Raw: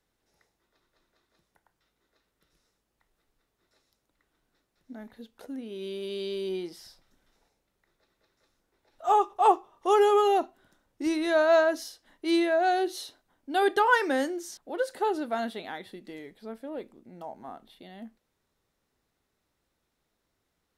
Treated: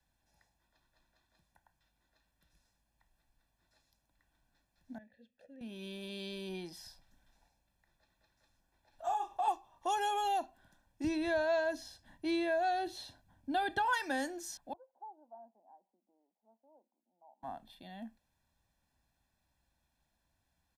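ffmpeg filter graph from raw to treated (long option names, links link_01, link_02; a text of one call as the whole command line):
ffmpeg -i in.wav -filter_complex "[0:a]asettb=1/sr,asplit=3[link_01][link_02][link_03];[link_01]atrim=end=4.984[link_04];[link_02]atrim=start=4.98:end=5.61,asetpts=PTS-STARTPTS,afade=type=in:duration=0.004:curve=qsin,afade=type=out:start_time=0.626:duration=0.004:curve=qsin,asplit=3[link_05][link_06][link_07];[link_05]bandpass=frequency=530:width_type=q:width=8,volume=0dB[link_08];[link_06]bandpass=frequency=1840:width_type=q:width=8,volume=-6dB[link_09];[link_07]bandpass=frequency=2480:width_type=q:width=8,volume=-9dB[link_10];[link_08][link_09][link_10]amix=inputs=3:normalize=0,bass=frequency=250:gain=15,treble=frequency=4000:gain=7,bandreject=frequency=50:width_type=h:width=6,bandreject=frequency=100:width_type=h:width=6,bandreject=frequency=150:width_type=h:width=6,bandreject=frequency=200:width_type=h:width=6,bandreject=frequency=250:width_type=h:width=6,bandreject=frequency=300:width_type=h:width=6,bandreject=frequency=350:width_type=h:width=6[link_11];[link_03]atrim=start=5.606[link_12];[link_04][link_11]acrossfade=duration=0.004:curve1=hsin:curve2=qsin[link_13];[link_13][link_12]acrossfade=duration=0.004:curve1=qsin:curve2=hsin,asettb=1/sr,asplit=3[link_14][link_15][link_16];[link_14]atrim=end=9.064[link_17];[link_15]atrim=start=9.06:end=9.48,asetpts=PTS-STARTPTS,afade=type=in:duration=0.004:curve=qsin,afade=type=out:start_time=0.416:duration=0.004:curve=qsin,acompressor=threshold=-27dB:ratio=3:attack=3.2:release=140:knee=1:detection=peak,asplit=2[link_18][link_19];[link_19]adelay=34,volume=-5dB[link_20];[link_18][link_20]amix=inputs=2:normalize=0,atrim=end_sample=18522[link_21];[link_16]atrim=start=9.476[link_22];[link_17][link_21]acrossfade=duration=0.004:curve1=hsin:curve2=qsin[link_23];[link_23][link_22]acrossfade=duration=0.004:curve1=qsin:curve2=hsin,asettb=1/sr,asplit=3[link_24][link_25][link_26];[link_24]atrim=end=11.044[link_27];[link_25]atrim=start=11.04:end=13.93,asetpts=PTS-STARTPTS,afade=type=in:duration=0.004:curve=qsin,afade=type=out:start_time=2.886:duration=0.004:curve=qsin,acrossover=split=3800[link_28][link_29];[link_29]acompressor=threshold=-52dB:ratio=4:attack=1:release=60[link_30];[link_28][link_30]amix=inputs=2:normalize=0,equalizer=frequency=100:width=0.46:gain=12.5[link_31];[link_26]atrim=start=13.926[link_32];[link_27][link_31]acrossfade=duration=0.004:curve1=hsin:curve2=qsin[link_33];[link_33][link_32]acrossfade=duration=0.004:curve1=qsin:curve2=hsin,asettb=1/sr,asplit=3[link_34][link_35][link_36];[link_34]atrim=end=14.734[link_37];[link_35]atrim=start=14.73:end=17.43,asetpts=PTS-STARTPTS,afade=type=in:duration=0.004:curve=qsin,afade=type=out:start_time=2.696:duration=0.004:curve=qsin,asuperpass=centerf=430:order=12:qfactor=0.57,aderivative[link_38];[link_36]atrim=start=17.426[link_39];[link_37][link_38]acrossfade=duration=0.004:curve1=hsin:curve2=qsin[link_40];[link_40][link_39]acrossfade=duration=0.004:curve1=qsin:curve2=hsin,equalizer=frequency=60:width=1.2:gain=5,aecho=1:1:1.2:0.75,acrossover=split=120|3000[link_41][link_42][link_43];[link_42]acompressor=threshold=-28dB:ratio=3[link_44];[link_41][link_44][link_43]amix=inputs=3:normalize=0,volume=-4.5dB" out.wav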